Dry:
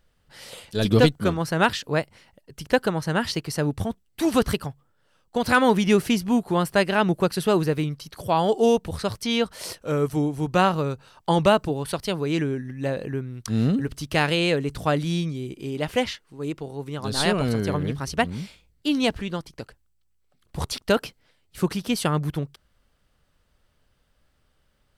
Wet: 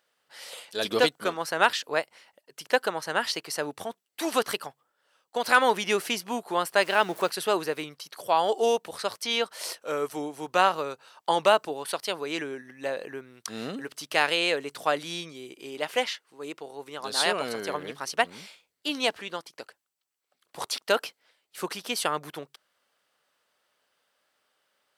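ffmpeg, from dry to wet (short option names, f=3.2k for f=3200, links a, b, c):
-filter_complex "[0:a]asettb=1/sr,asplit=3[a][b][c];[a]atrim=end=6.824[d];[b]atrim=start=6.82:end=7.3,asetpts=PTS-STARTPTS,afade=t=in:d=0.004:c=qsin,afade=t=out:st=0.476:d=0.004:c=qsin,aeval=exprs='val(0)+0.5*0.0178*sgn(val(0))':c=same[e];[c]atrim=start=7.296[f];[d][e]acrossfade=d=0.004:c1=hsin:c2=qsin[g];[g][f]acrossfade=d=0.004:c1=qsin:c2=hsin,highpass=540"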